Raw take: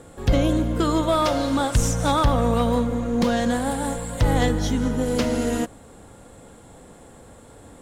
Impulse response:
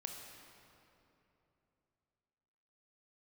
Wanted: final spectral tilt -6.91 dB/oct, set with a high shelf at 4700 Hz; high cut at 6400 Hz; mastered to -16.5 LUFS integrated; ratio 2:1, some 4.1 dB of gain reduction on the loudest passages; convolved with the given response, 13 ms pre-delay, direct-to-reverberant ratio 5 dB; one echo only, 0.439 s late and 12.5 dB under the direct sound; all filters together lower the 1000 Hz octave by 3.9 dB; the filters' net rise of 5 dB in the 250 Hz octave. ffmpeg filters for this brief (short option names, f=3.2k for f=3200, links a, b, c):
-filter_complex "[0:a]lowpass=6.4k,equalizer=f=250:t=o:g=6,equalizer=f=1k:t=o:g=-5.5,highshelf=f=4.7k:g=-3.5,acompressor=threshold=-20dB:ratio=2,aecho=1:1:439:0.237,asplit=2[a][b];[1:a]atrim=start_sample=2205,adelay=13[c];[b][c]afir=irnorm=-1:irlink=0,volume=-3dB[d];[a][d]amix=inputs=2:normalize=0,volume=4.5dB"